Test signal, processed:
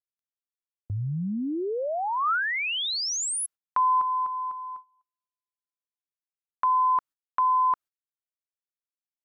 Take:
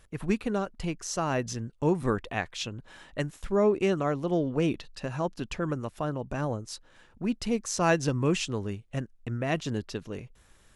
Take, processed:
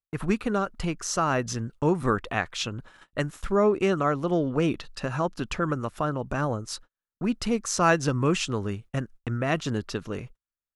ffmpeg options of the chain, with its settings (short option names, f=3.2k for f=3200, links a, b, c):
-filter_complex "[0:a]agate=range=-48dB:threshold=-47dB:ratio=16:detection=peak,equalizer=f=1.3k:t=o:w=0.54:g=7.5,asplit=2[a][b];[b]acompressor=threshold=-33dB:ratio=6,volume=-2dB[c];[a][c]amix=inputs=2:normalize=0"